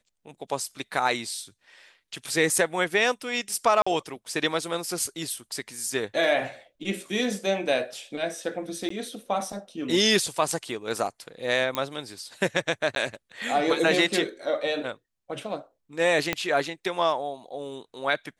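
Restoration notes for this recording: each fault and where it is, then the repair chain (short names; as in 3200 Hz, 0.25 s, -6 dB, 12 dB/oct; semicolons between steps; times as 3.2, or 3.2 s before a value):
3.82–3.87 gap 45 ms
8.89–8.9 gap 14 ms
11.75 pop -10 dBFS
12.95–12.96 gap 12 ms
16.33 pop -9 dBFS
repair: de-click; interpolate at 3.82, 45 ms; interpolate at 8.89, 14 ms; interpolate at 12.95, 12 ms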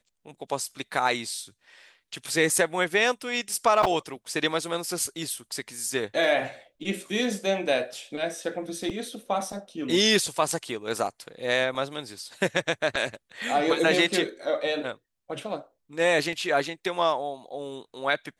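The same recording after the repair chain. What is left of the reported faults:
16.33 pop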